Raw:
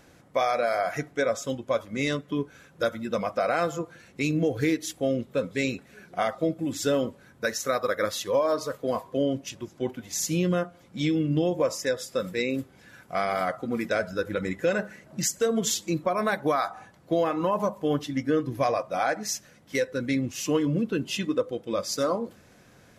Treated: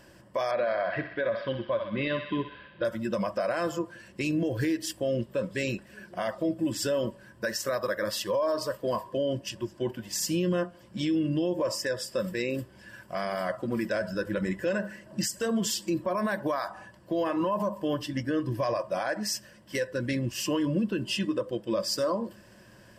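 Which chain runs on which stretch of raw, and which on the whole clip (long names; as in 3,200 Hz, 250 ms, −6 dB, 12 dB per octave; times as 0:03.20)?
0:00.51–0:02.85: Butterworth low-pass 4,300 Hz 72 dB per octave + feedback echo with a high-pass in the loop 63 ms, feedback 75%, high-pass 700 Hz, level −9.5 dB
whole clip: EQ curve with evenly spaced ripples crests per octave 1.3, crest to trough 10 dB; brickwall limiter −20 dBFS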